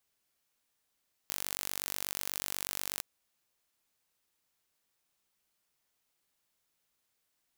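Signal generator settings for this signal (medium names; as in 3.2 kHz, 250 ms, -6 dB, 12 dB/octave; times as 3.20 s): pulse train 48.2 per s, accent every 0, -8.5 dBFS 1.72 s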